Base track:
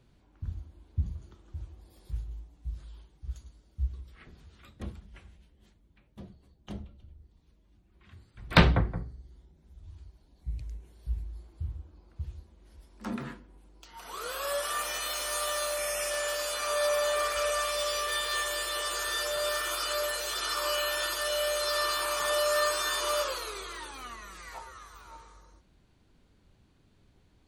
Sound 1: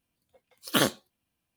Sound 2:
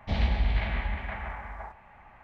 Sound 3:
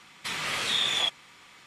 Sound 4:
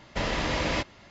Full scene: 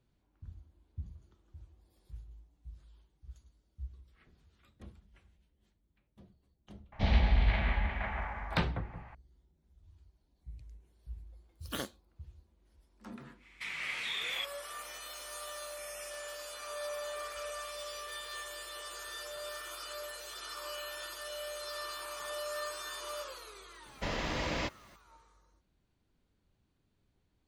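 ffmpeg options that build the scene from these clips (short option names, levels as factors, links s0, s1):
-filter_complex "[0:a]volume=0.251[s0];[2:a]aresample=16000,aresample=44100[s1];[3:a]equalizer=f=2200:t=o:w=0.75:g=14[s2];[4:a]acrusher=bits=9:mix=0:aa=0.000001[s3];[s1]atrim=end=2.23,asetpts=PTS-STARTPTS,volume=0.944,afade=t=in:d=0.004:c=hsin,afade=t=out:st=2.226:d=0.004:c=hsin,adelay=6920[s4];[1:a]atrim=end=1.56,asetpts=PTS-STARTPTS,volume=0.178,afade=t=in:d=0.004:c=hsin,afade=t=out:st=1.556:d=0.004:c=hsin,adelay=484218S[s5];[s2]atrim=end=1.66,asetpts=PTS-STARTPTS,volume=0.158,afade=t=in:d=0.1,afade=t=out:st=1.56:d=0.1,adelay=13360[s6];[s3]atrim=end=1.1,asetpts=PTS-STARTPTS,volume=0.447,afade=t=in:d=0.004:c=hsin,afade=t=out:st=1.096:d=0.004:c=hsin,adelay=23860[s7];[s0][s4][s5][s6][s7]amix=inputs=5:normalize=0"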